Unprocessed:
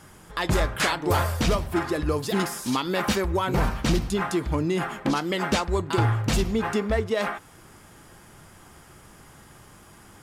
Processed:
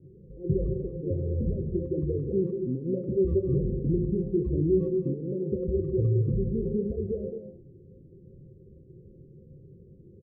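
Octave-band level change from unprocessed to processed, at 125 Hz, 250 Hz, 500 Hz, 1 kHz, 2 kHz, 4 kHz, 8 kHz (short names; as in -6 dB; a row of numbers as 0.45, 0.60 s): -0.5 dB, -2.0 dB, -1.0 dB, under -40 dB, under -40 dB, under -40 dB, under -40 dB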